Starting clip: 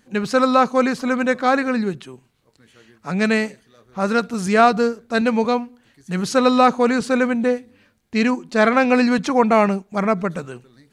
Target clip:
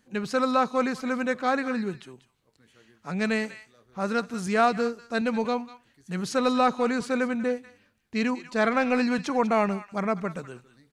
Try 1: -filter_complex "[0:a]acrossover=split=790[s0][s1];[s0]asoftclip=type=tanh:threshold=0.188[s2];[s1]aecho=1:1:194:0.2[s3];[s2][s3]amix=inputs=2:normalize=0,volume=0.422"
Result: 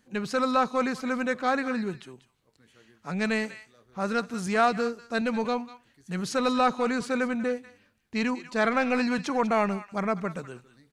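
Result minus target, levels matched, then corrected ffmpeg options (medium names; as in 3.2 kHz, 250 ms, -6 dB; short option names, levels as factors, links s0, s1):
saturation: distortion +10 dB
-filter_complex "[0:a]acrossover=split=790[s0][s1];[s0]asoftclip=type=tanh:threshold=0.422[s2];[s1]aecho=1:1:194:0.2[s3];[s2][s3]amix=inputs=2:normalize=0,volume=0.422"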